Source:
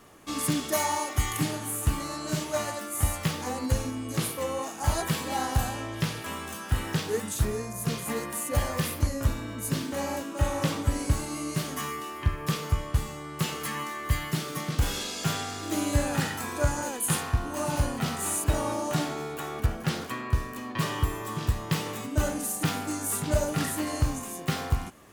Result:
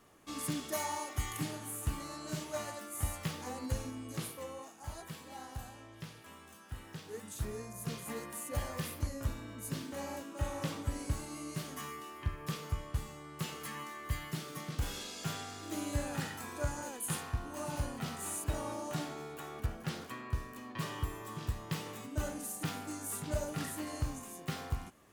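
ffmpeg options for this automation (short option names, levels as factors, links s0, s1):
-af "volume=0.841,afade=t=out:st=4.01:d=0.81:silence=0.375837,afade=t=in:st=7.01:d=0.6:silence=0.398107"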